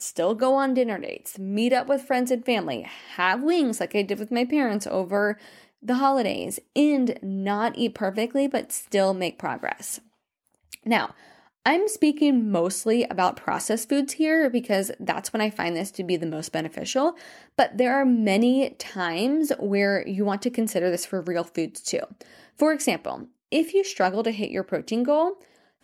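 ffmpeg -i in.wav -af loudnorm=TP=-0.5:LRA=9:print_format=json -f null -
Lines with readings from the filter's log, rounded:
"input_i" : "-24.6",
"input_tp" : "-6.7",
"input_lra" : "3.2",
"input_thresh" : "-34.9",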